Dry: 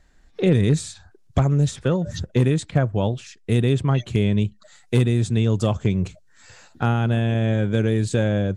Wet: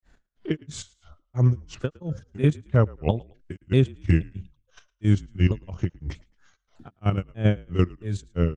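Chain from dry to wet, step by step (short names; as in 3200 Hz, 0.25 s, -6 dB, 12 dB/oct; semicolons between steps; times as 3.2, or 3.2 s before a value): repeated pitch sweeps -4.5 st, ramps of 0.61 s; tone controls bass +1 dB, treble -4 dB; level quantiser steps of 10 dB; grains 0.244 s, grains 3/s, pitch spread up and down by 0 st; on a send: frequency-shifting echo 0.11 s, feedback 34%, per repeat -44 Hz, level -23.5 dB; on the sum: gain +5 dB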